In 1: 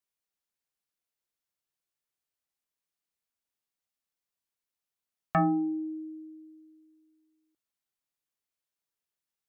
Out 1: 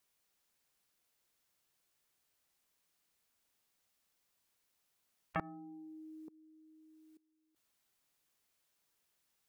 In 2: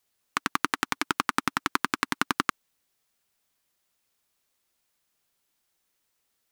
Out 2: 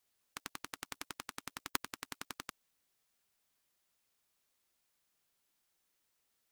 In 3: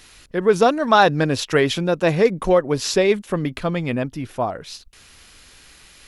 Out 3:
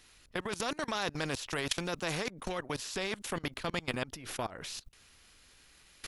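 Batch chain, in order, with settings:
output level in coarse steps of 23 dB
every bin compressed towards the loudest bin 2 to 1
level −4.5 dB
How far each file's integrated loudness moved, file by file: −16.5, −16.5, −17.0 LU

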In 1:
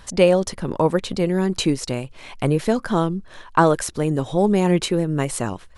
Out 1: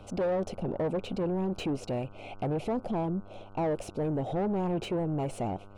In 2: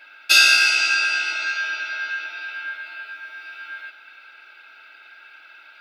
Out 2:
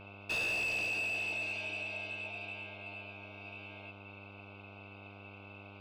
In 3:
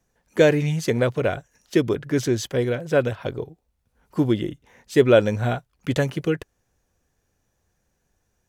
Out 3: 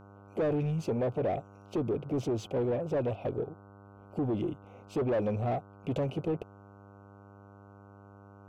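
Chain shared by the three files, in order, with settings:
elliptic band-stop filter 760–2,600 Hz, stop band 40 dB
high shelf with overshoot 2,700 Hz −10 dB, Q 1.5
in parallel at −2 dB: brickwall limiter −16.5 dBFS
on the sum: soft clipping −18 dBFS
mid-hump overdrive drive 15 dB, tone 1,300 Hz, clips at −18 dBFS
hum with harmonics 100 Hz, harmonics 15, −47 dBFS −4 dB per octave
level −6 dB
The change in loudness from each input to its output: −11.5, −18.0, −10.5 LU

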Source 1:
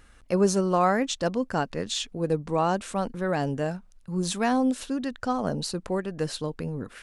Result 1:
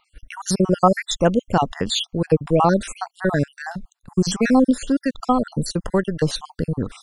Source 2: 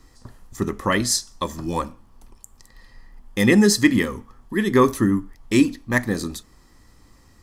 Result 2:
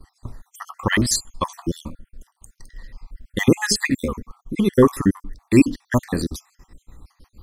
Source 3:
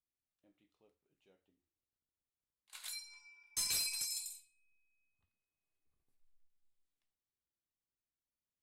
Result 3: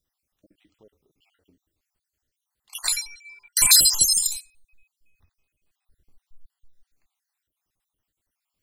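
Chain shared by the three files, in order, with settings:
time-frequency cells dropped at random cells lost 58%
noise gate −57 dBFS, range −9 dB
low-shelf EQ 110 Hz +8.5 dB
normalise the peak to −1.5 dBFS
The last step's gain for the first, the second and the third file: +9.0, +3.0, +25.0 decibels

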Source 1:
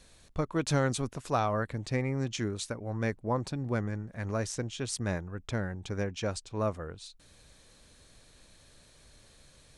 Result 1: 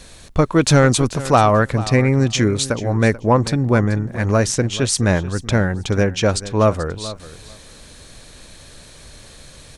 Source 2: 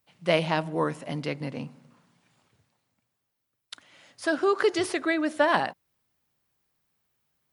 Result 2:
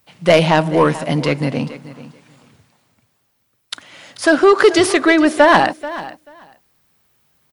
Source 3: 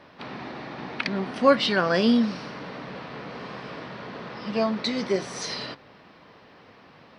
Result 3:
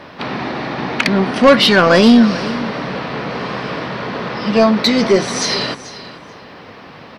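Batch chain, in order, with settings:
soft clipping −17 dBFS
repeating echo 436 ms, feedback 15%, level −16 dB
normalise the peak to −1.5 dBFS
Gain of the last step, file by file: +16.0, +14.5, +14.5 decibels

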